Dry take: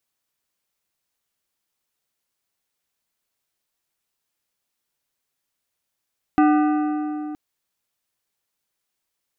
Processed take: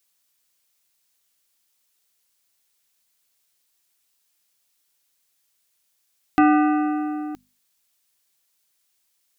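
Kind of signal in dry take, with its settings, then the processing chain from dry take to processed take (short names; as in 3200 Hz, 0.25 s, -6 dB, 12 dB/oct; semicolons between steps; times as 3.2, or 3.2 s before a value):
metal hit plate, length 0.97 s, lowest mode 301 Hz, modes 7, decay 3.57 s, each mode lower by 5.5 dB, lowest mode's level -12.5 dB
high shelf 2200 Hz +11 dB; notches 50/100/150/200/250 Hz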